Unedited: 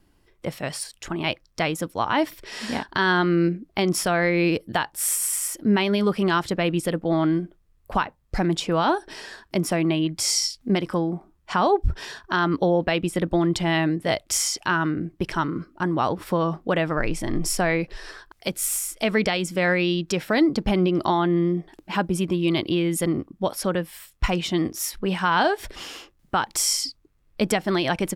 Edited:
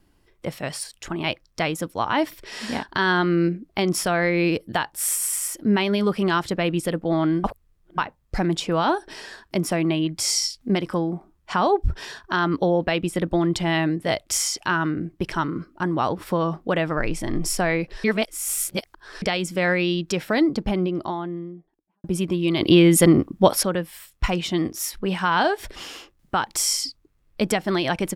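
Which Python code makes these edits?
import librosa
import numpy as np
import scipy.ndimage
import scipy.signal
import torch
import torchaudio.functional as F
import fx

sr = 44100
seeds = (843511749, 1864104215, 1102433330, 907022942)

y = fx.studio_fade_out(x, sr, start_s=20.19, length_s=1.85)
y = fx.edit(y, sr, fx.reverse_span(start_s=7.44, length_s=0.54),
    fx.reverse_span(start_s=18.04, length_s=1.18),
    fx.clip_gain(start_s=22.61, length_s=1.02, db=9.0), tone=tone)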